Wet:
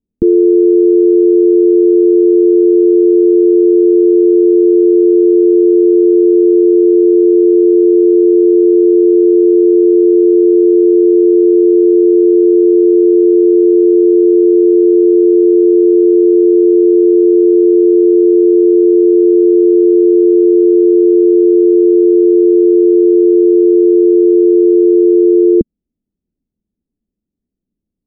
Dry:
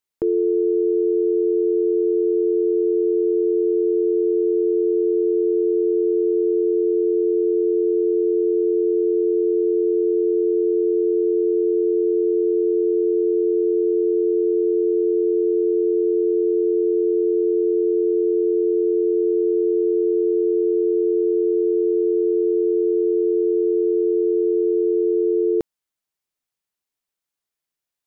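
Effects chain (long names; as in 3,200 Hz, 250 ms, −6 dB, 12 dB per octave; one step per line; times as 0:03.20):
transistor ladder low-pass 260 Hz, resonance 40%
parametric band 130 Hz −12.5 dB 0.9 octaves
boost into a limiter +36 dB
level −1 dB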